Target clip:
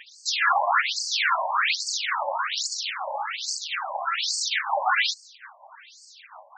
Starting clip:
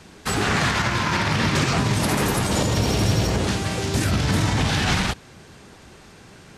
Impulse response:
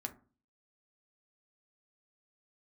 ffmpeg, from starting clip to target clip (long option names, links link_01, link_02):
-filter_complex "[0:a]aphaser=in_gain=1:out_gain=1:delay=3:decay=0.67:speed=1.1:type=sinusoidal,asplit=3[link_01][link_02][link_03];[link_01]afade=type=out:start_time=1.97:duration=0.02[link_04];[link_02]aeval=exprs='val(0)*sin(2*PI*170*n/s)':channel_layout=same,afade=type=in:start_time=1.97:duration=0.02,afade=type=out:start_time=3.67:duration=0.02[link_05];[link_03]afade=type=in:start_time=3.67:duration=0.02[link_06];[link_04][link_05][link_06]amix=inputs=3:normalize=0,afftfilt=real='re*between(b*sr/1024,750*pow(6200/750,0.5+0.5*sin(2*PI*1.2*pts/sr))/1.41,750*pow(6200/750,0.5+0.5*sin(2*PI*1.2*pts/sr))*1.41)':imag='im*between(b*sr/1024,750*pow(6200/750,0.5+0.5*sin(2*PI*1.2*pts/sr))/1.41,750*pow(6200/750,0.5+0.5*sin(2*PI*1.2*pts/sr))*1.41)':win_size=1024:overlap=0.75,volume=5dB"